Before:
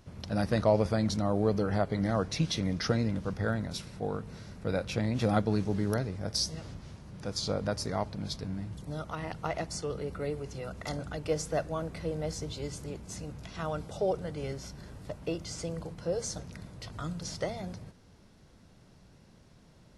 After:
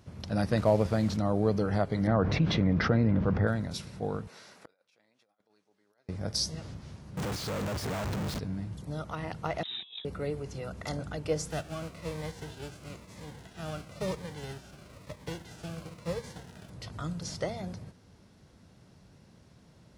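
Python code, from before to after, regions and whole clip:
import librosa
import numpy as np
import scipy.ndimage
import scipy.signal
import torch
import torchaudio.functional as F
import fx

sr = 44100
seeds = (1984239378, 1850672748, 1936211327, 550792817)

y = fx.chain(x, sr, fx.delta_mod(bps=64000, step_db=-39.0),
    fx.high_shelf(hz=5400.0, db=-8.5), at=(0.57, 1.17))
y = fx.chain(y, sr, fx.lowpass(hz=1900.0, slope=12),
    fx.env_flatten(amount_pct=70), at=(2.07, 3.47))
y = fx.chain(y, sr, fx.bessel_highpass(hz=720.0, order=2),
    fx.over_compress(threshold_db=-39.0, ratio=-0.5),
    fx.gate_flip(shuts_db=-38.0, range_db=-31), at=(4.27, 6.09))
y = fx.chain(y, sr, fx.clip_1bit(),
    fx.high_shelf(hz=5100.0, db=-8.5),
    fx.quant_float(bits=2), at=(7.17, 8.39))
y = fx.chain(y, sr, fx.freq_invert(carrier_hz=3800),
    fx.over_compress(threshold_db=-41.0, ratio=-0.5), at=(9.63, 10.05))
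y = fx.envelope_flatten(y, sr, power=0.3, at=(11.5, 16.68), fade=0.02)
y = fx.lowpass(y, sr, hz=1100.0, slope=6, at=(11.5, 16.68), fade=0.02)
y = fx.notch_cascade(y, sr, direction='falling', hz=1.0, at=(11.5, 16.68), fade=0.02)
y = scipy.signal.sosfilt(scipy.signal.butter(2, 63.0, 'highpass', fs=sr, output='sos'), y)
y = fx.low_shelf(y, sr, hz=130.0, db=3.5)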